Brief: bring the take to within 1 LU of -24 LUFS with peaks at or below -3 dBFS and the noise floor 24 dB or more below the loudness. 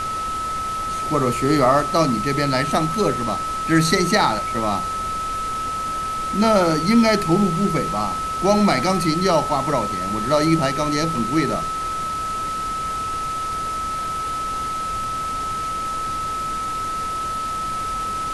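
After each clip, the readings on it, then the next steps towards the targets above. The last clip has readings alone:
steady tone 1300 Hz; tone level -23 dBFS; noise floor -26 dBFS; noise floor target -45 dBFS; loudness -21.0 LUFS; peak -2.5 dBFS; loudness target -24.0 LUFS
-> notch 1300 Hz, Q 30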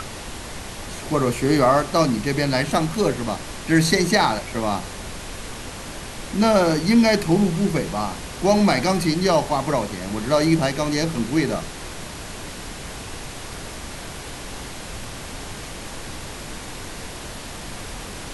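steady tone none; noise floor -35 dBFS; noise floor target -45 dBFS
-> noise print and reduce 10 dB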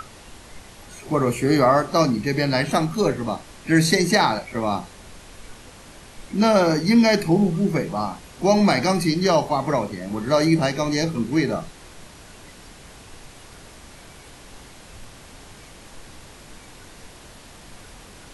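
noise floor -45 dBFS; loudness -20.5 LUFS; peak -3.0 dBFS; loudness target -24.0 LUFS
-> gain -3.5 dB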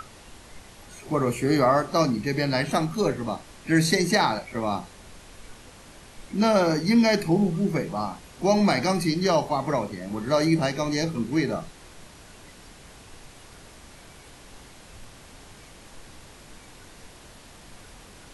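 loudness -24.0 LUFS; peak -6.5 dBFS; noise floor -48 dBFS

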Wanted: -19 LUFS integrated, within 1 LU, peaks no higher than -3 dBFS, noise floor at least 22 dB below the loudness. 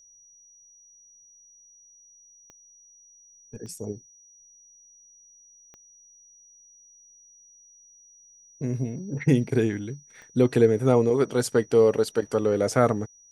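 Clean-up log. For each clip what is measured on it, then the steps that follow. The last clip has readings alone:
clicks 4; steady tone 5800 Hz; tone level -52 dBFS; loudness -24.0 LUFS; peak -6.0 dBFS; loudness target -19.0 LUFS
-> de-click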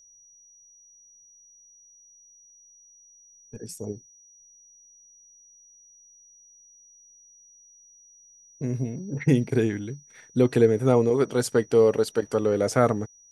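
clicks 0; steady tone 5800 Hz; tone level -52 dBFS
-> notch 5800 Hz, Q 30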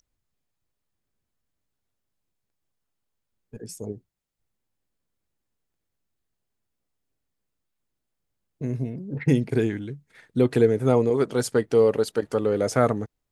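steady tone none; loudness -23.5 LUFS; peak -6.0 dBFS; loudness target -19.0 LUFS
-> gain +4.5 dB; limiter -3 dBFS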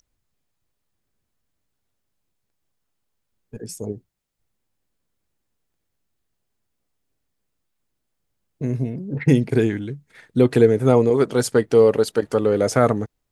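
loudness -19.0 LUFS; peak -3.0 dBFS; noise floor -77 dBFS

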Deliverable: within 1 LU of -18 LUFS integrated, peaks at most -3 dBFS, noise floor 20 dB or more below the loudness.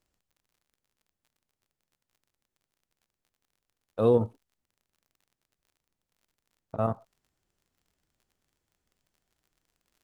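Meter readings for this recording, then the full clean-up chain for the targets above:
ticks 33/s; loudness -27.5 LUFS; peak -10.5 dBFS; loudness target -18.0 LUFS
-> de-click; gain +9.5 dB; limiter -3 dBFS

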